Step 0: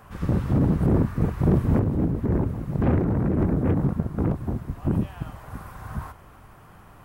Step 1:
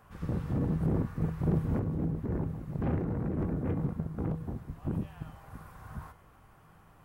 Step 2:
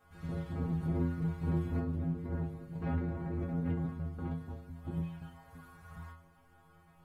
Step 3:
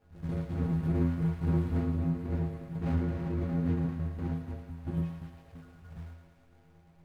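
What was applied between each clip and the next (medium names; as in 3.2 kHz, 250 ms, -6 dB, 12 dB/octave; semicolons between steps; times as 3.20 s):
feedback comb 160 Hz, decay 0.66 s, harmonics odd, mix 70%
dynamic bell 2.7 kHz, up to +5 dB, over -57 dBFS, Q 0.77; inharmonic resonator 82 Hz, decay 0.7 s, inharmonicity 0.008; trim +7.5 dB
median filter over 41 samples; thinning echo 111 ms, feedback 80%, high-pass 530 Hz, level -9 dB; trim +4.5 dB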